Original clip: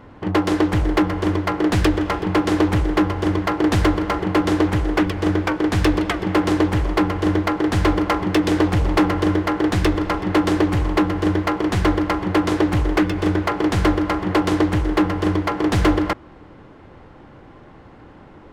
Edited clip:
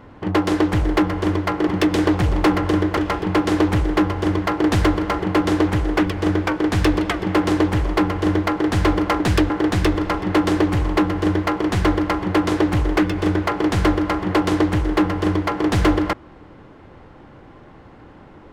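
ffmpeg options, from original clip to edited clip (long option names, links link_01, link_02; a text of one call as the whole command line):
ffmpeg -i in.wav -filter_complex "[0:a]asplit=5[link_01][link_02][link_03][link_04][link_05];[link_01]atrim=end=1.672[link_06];[link_02]atrim=start=8.198:end=9.502[link_07];[link_03]atrim=start=1.968:end=8.202[link_08];[link_04]atrim=start=1.668:end=1.972[link_09];[link_05]atrim=start=9.498[link_10];[link_06][link_07]acrossfade=duration=0.004:curve1=hsin:curve2=hsin[link_11];[link_11][link_08]acrossfade=duration=0.004:curve1=hsin:curve2=hsin[link_12];[link_12][link_09]acrossfade=duration=0.004:curve1=hsin:curve2=hsin[link_13];[link_13][link_10]acrossfade=duration=0.004:curve1=hsin:curve2=hsin" out.wav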